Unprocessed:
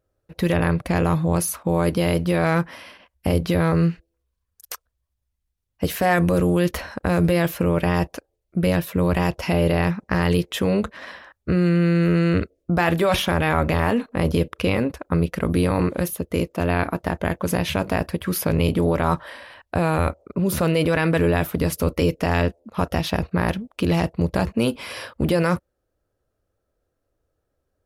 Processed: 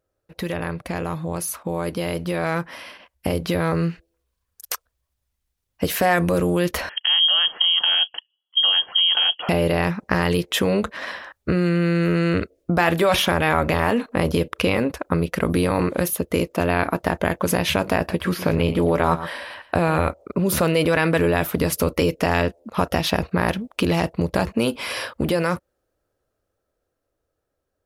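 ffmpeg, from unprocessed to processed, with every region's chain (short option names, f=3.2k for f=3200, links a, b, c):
-filter_complex "[0:a]asettb=1/sr,asplit=3[a][b][c];[a]atrim=end=6.894[d];[b]atrim=start=6.89:end=9.49,asetpts=PTS-STARTPTS,afade=t=in:d=0.004:c=qsin,afade=t=out:st=2.596:d=0.004:c=qsin,highpass=140,equalizer=f=1k:t=o:w=1.4:g=-15,lowpass=f=2.9k:t=q:w=0.5098,lowpass=f=2.9k:t=q:w=0.6013,lowpass=f=2.9k:t=q:w=0.9,lowpass=f=2.9k:t=q:w=2.563,afreqshift=-3400[e];[c]atrim=start=9.486[f];[d][e]acrossfade=d=0.004:c1=hsin:c2=qsin[g];[g][f]acrossfade=d=0.004:c1=qsin:c2=hsin,asettb=1/sr,asplit=3[h][i][j];[h]atrim=end=17.974[k];[i]atrim=start=17.97:end=20.09,asetpts=PTS-STARTPTS,afade=t=in:d=0.004:c=qsin,afade=t=out:st=2.116:d=0.004:c=qsin,acrossover=split=4100[l][m];[m]acompressor=threshold=-44dB:ratio=4:attack=1:release=60[n];[l][n]amix=inputs=2:normalize=0,asplit=2[o][p];[p]adelay=12,volume=-13.5dB[q];[o][q]amix=inputs=2:normalize=0,atrim=end_sample=93492,aecho=1:1:114:0.188,atrim=end_sample=93492[r];[j]atrim=start=20.086[s];[k][r]acrossfade=d=0.004:c1=hsin:c2=qsin[t];[t][s]acrossfade=d=0.004:c1=qsin:c2=hsin,acompressor=threshold=-23dB:ratio=2,lowshelf=f=220:g=-7,dynaudnorm=f=540:g=11:m=7.5dB"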